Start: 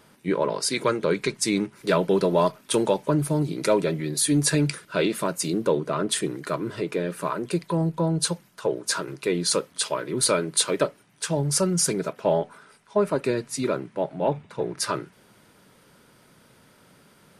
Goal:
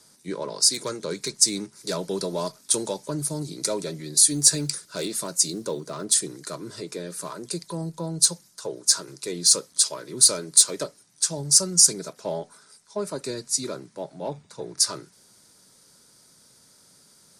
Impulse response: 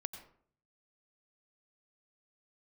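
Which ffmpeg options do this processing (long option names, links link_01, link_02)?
-filter_complex "[0:a]lowpass=7300,acrossover=split=210|800|4800[link_01][link_02][link_03][link_04];[link_03]asoftclip=type=tanh:threshold=-24dB[link_05];[link_01][link_02][link_05][link_04]amix=inputs=4:normalize=0,aexciter=amount=10:drive=4.4:freq=4200,asettb=1/sr,asplit=3[link_06][link_07][link_08];[link_06]atrim=end=4.304[link_09];[link_07]atrim=start=4.3:end=6.05,asetpts=PTS-STARTPTS,afade=type=in:duration=0.004:curve=qsin,afade=type=out:start_time=1.746:duration=0.004:curve=qsin,acrusher=bits=9:mode=log:mix=0:aa=0.000001[link_10];[link_08]atrim=start=6.046[link_11];[link_09][link_10]acrossfade=duration=0.004:curve1=hsin:curve2=qsin[link_12];[link_12][link_11]acrossfade=duration=0.004:curve1=qsin:curve2=hsin,volume=-7.5dB"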